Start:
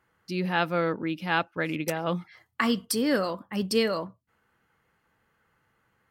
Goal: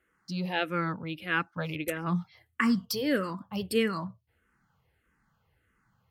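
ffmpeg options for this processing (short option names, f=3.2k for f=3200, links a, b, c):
-filter_complex "[0:a]asubboost=boost=2.5:cutoff=220,asplit=2[a][b];[b]afreqshift=-1.6[c];[a][c]amix=inputs=2:normalize=1"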